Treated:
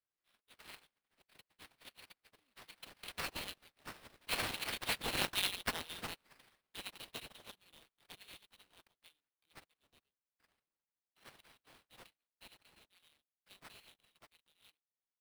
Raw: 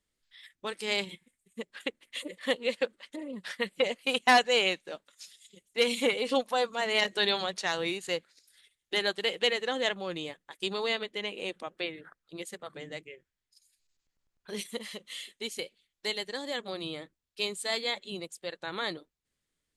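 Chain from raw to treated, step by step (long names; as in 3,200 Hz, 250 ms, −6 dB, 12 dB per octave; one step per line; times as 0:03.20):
source passing by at 0:06.57, 12 m/s, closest 3.3 metres
inverse Chebyshev high-pass filter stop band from 2,400 Hz, stop band 40 dB
in parallel at +1 dB: speech leveller within 5 dB 0.5 s
on the sum: sample-rate reduction 6,900 Hz, jitter 20%
tempo change 1.3×
level +7 dB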